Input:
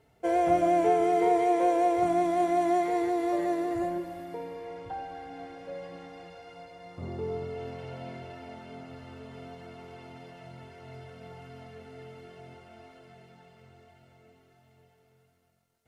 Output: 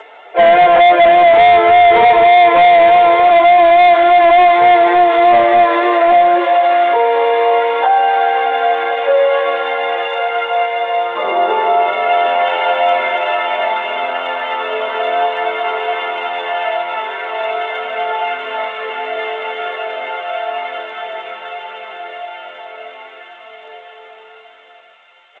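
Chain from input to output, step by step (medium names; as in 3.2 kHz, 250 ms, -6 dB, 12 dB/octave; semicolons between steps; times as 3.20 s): high-pass 530 Hz 24 dB/octave; peaking EQ 1.2 kHz +2.5 dB 1.5 oct; in parallel at -2 dB: compression 5:1, threshold -37 dBFS, peak gain reduction 15 dB; on the sum: plain phase-vocoder stretch 1.6×; hard clipper -28.5 dBFS, distortion -8 dB; on a send: feedback echo behind a high-pass 715 ms, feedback 71%, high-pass 2.4 kHz, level -10 dB; on the sum: resampled via 8 kHz; loudness maximiser +31.5 dB; trim -3.5 dB; G.722 64 kbps 16 kHz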